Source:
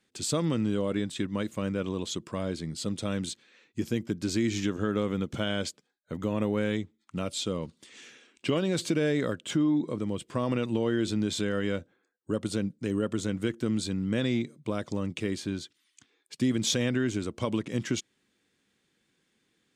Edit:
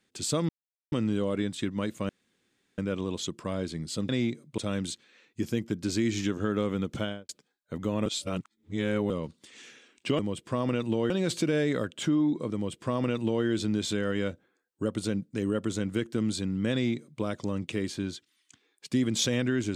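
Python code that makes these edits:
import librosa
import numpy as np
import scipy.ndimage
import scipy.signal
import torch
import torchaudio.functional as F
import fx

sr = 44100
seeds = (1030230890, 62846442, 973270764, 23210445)

y = fx.studio_fade_out(x, sr, start_s=5.37, length_s=0.31)
y = fx.edit(y, sr, fx.insert_silence(at_s=0.49, length_s=0.43),
    fx.insert_room_tone(at_s=1.66, length_s=0.69),
    fx.reverse_span(start_s=6.45, length_s=1.04),
    fx.duplicate(start_s=10.02, length_s=0.91, to_s=8.58),
    fx.duplicate(start_s=14.21, length_s=0.49, to_s=2.97), tone=tone)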